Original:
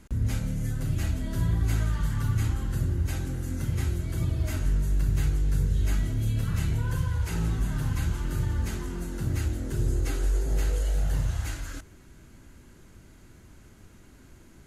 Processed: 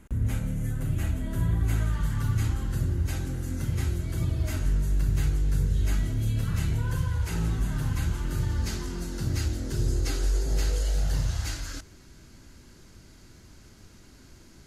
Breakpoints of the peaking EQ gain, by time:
peaking EQ 4.9 kHz 0.8 oct
1.46 s -8.5 dB
2.34 s +1.5 dB
8.25 s +1.5 dB
8.67 s +10 dB

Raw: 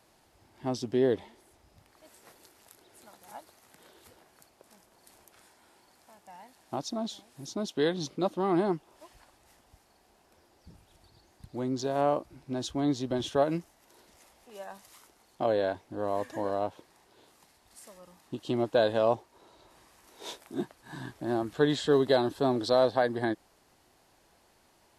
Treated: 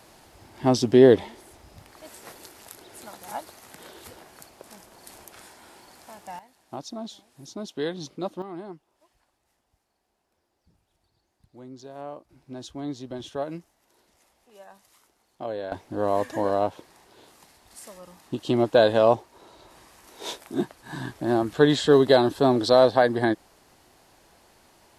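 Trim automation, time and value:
+11.5 dB
from 6.39 s -2 dB
from 8.42 s -11.5 dB
from 12.29 s -5 dB
from 15.72 s +7 dB

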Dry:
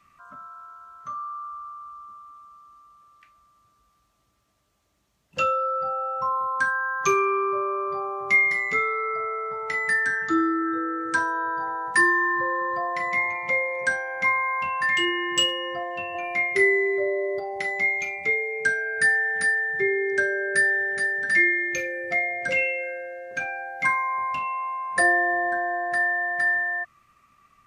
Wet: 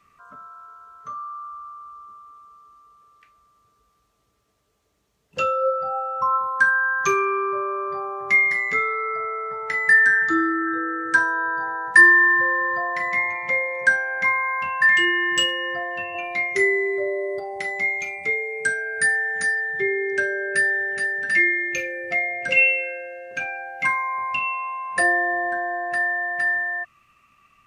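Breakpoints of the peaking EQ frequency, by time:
peaking EQ +12.5 dB 0.23 oct
5.54 s 440 Hz
6.53 s 1.7 kHz
15.99 s 1.7 kHz
16.69 s 8.6 kHz
19.28 s 8.6 kHz
19.89 s 2.7 kHz

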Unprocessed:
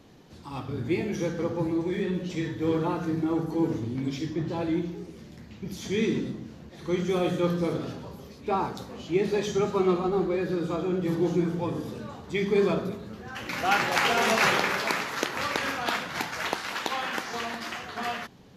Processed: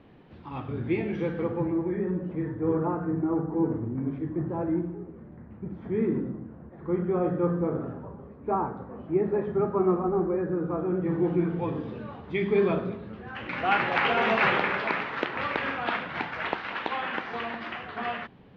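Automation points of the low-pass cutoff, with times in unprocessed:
low-pass 24 dB/octave
1.38 s 2.9 kHz
2.04 s 1.5 kHz
10.72 s 1.5 kHz
11.70 s 3 kHz

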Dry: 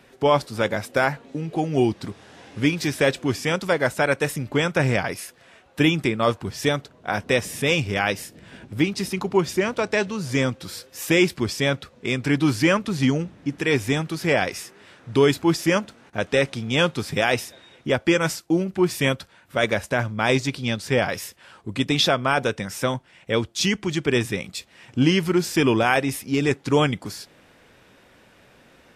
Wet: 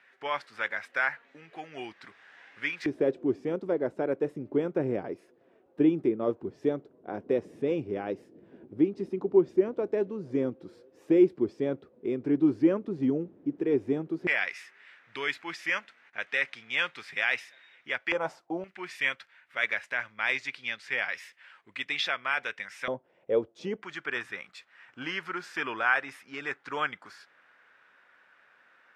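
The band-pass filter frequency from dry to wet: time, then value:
band-pass filter, Q 2.5
1.8 kHz
from 2.86 s 360 Hz
from 14.27 s 2 kHz
from 18.12 s 770 Hz
from 18.64 s 2 kHz
from 22.88 s 490 Hz
from 23.82 s 1.5 kHz

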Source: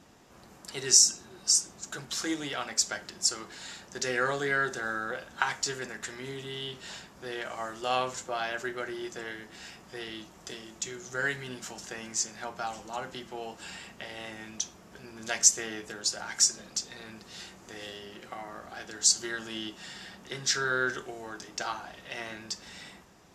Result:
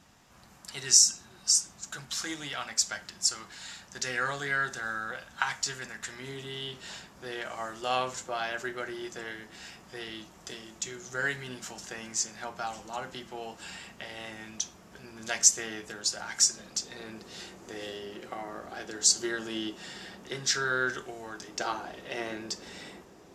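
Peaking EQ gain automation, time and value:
peaking EQ 390 Hz 1.4 oct
5.94 s -9 dB
6.37 s -1.5 dB
16.59 s -1.5 dB
17.03 s +6 dB
20.13 s +6 dB
20.65 s -1 dB
21.34 s -1 dB
21.74 s +9.5 dB

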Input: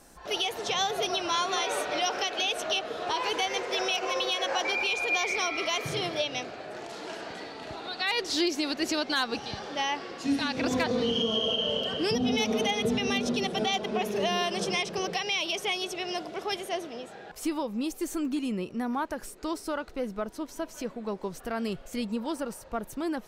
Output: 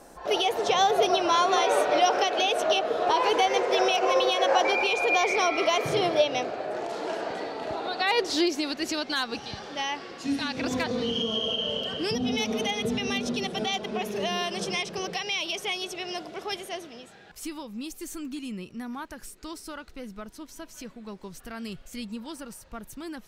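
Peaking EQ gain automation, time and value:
peaking EQ 580 Hz 2.3 oct
8.13 s +9.5 dB
8.79 s -2 dB
16.54 s -2 dB
17.20 s -10.5 dB

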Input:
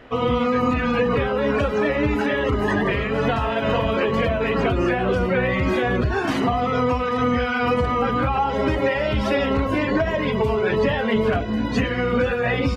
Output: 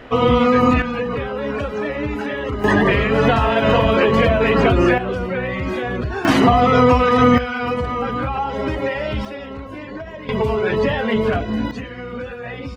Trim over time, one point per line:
+6 dB
from 0.82 s -3 dB
from 2.64 s +6 dB
from 4.98 s -2.5 dB
from 6.25 s +8 dB
from 7.38 s -1.5 dB
from 9.25 s -11 dB
from 10.29 s +1.5 dB
from 11.71 s -9 dB

